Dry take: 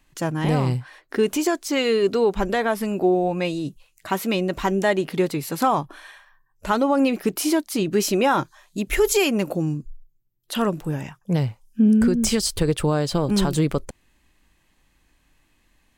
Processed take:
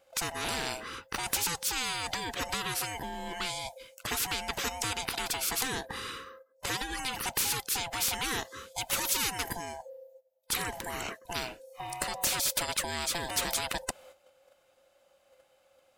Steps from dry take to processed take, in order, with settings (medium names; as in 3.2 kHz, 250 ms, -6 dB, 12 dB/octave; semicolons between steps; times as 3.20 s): split-band scrambler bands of 500 Hz; gate -57 dBFS, range -12 dB; spectrum-flattening compressor 4:1; trim -2 dB